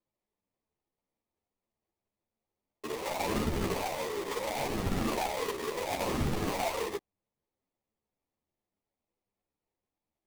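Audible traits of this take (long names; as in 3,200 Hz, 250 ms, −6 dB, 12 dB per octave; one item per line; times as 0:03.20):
aliases and images of a low sample rate 1,500 Hz, jitter 20%
a shimmering, thickened sound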